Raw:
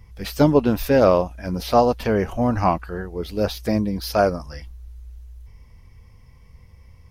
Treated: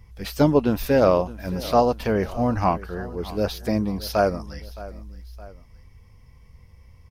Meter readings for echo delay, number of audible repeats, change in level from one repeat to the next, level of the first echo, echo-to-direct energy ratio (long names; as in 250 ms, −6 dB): 617 ms, 2, −6.5 dB, −18.0 dB, −17.0 dB